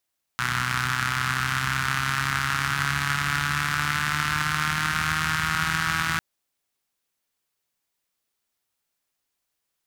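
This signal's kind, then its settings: four-cylinder engine model, changing speed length 5.80 s, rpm 3700, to 4900, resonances 82/130/1400 Hz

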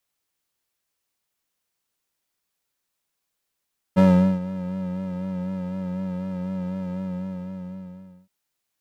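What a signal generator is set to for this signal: synth patch with vibrato F#3, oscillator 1 square, interval 0 st, oscillator 2 level -15 dB, sub -9.5 dB, noise -10 dB, filter bandpass, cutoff 200 Hz, Q 0.7, filter envelope 1 oct, filter sustain 40%, attack 24 ms, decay 0.41 s, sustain -17.5 dB, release 1.33 s, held 2.99 s, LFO 4 Hz, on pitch 43 cents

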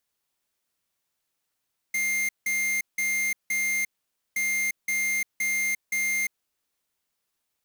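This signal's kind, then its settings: beep pattern square 2110 Hz, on 0.35 s, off 0.17 s, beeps 4, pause 0.51 s, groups 2, -26 dBFS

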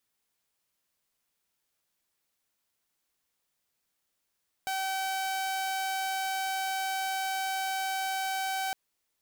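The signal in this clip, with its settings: tone saw 767 Hz -27 dBFS 4.06 s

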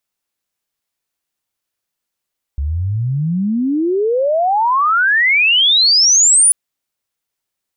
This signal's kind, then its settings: chirp logarithmic 67 Hz -> 10000 Hz -16 dBFS -> -6.5 dBFS 3.94 s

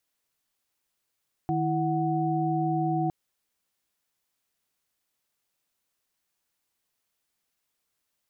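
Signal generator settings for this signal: chord D#3/E4/F#5 sine, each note -28 dBFS 1.61 s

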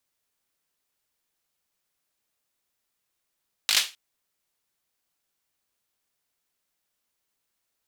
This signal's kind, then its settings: hand clap length 0.26 s, bursts 5, apart 19 ms, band 3400 Hz, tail 0.27 s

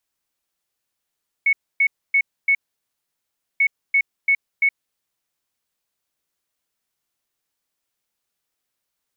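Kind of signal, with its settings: beep pattern sine 2210 Hz, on 0.07 s, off 0.27 s, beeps 4, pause 1.05 s, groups 2, -13 dBFS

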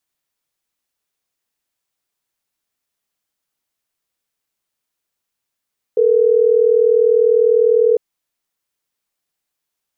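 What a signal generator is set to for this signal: call progress tone ringback tone, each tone -12.5 dBFS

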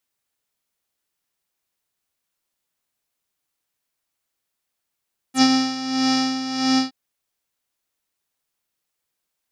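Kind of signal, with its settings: synth patch with tremolo C4, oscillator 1 square, oscillator 2 saw, oscillator 2 level -8.5 dB, sub -26 dB, filter lowpass, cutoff 4700 Hz, Q 6.5, filter envelope 1.5 oct, filter decay 0.05 s, filter sustain 10%, attack 75 ms, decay 0.06 s, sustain -7 dB, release 0.13 s, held 1.44 s, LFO 1.6 Hz, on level 10 dB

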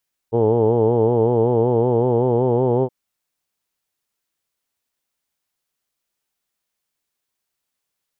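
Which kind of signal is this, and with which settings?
formant vowel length 2.57 s, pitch 112 Hz, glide +2 st, F1 440 Hz, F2 870 Hz, F3 3100 Hz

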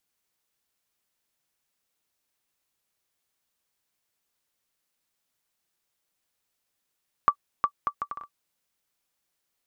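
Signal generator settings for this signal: bouncing ball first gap 0.36 s, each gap 0.64, 1160 Hz, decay 74 ms -8 dBFS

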